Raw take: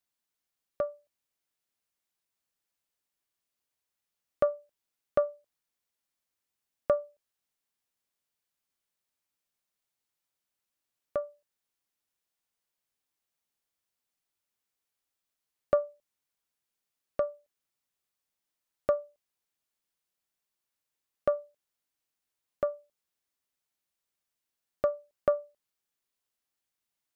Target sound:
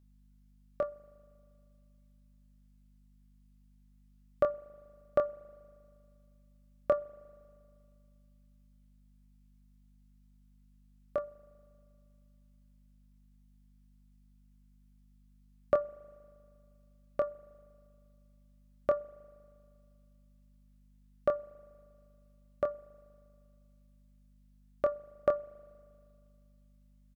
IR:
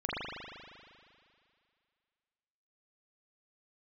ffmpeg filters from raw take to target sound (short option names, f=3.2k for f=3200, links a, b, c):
-filter_complex "[0:a]aeval=exprs='val(0)+0.000891*(sin(2*PI*50*n/s)+sin(2*PI*2*50*n/s)/2+sin(2*PI*3*50*n/s)/3+sin(2*PI*4*50*n/s)/4+sin(2*PI*5*50*n/s)/5)':c=same,asplit=2[a][b];[b]adelay=25,volume=-6.5dB[c];[a][c]amix=inputs=2:normalize=0,asplit=2[d][e];[1:a]atrim=start_sample=2205[f];[e][f]afir=irnorm=-1:irlink=0,volume=-28.5dB[g];[d][g]amix=inputs=2:normalize=0,volume=-1.5dB"